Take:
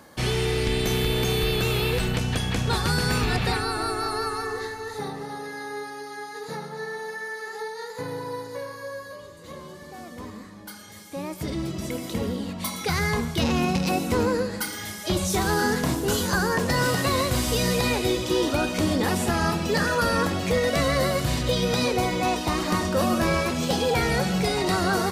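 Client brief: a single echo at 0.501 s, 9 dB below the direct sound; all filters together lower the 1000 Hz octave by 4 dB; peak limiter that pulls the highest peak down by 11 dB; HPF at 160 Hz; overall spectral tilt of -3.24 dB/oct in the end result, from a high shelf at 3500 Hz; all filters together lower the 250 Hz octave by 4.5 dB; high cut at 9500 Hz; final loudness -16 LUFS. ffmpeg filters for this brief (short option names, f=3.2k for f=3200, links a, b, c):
-af "highpass=160,lowpass=9.5k,equalizer=f=250:t=o:g=-4.5,equalizer=f=1k:t=o:g=-5.5,highshelf=f=3.5k:g=3,alimiter=limit=-23dB:level=0:latency=1,aecho=1:1:501:0.355,volume=15.5dB"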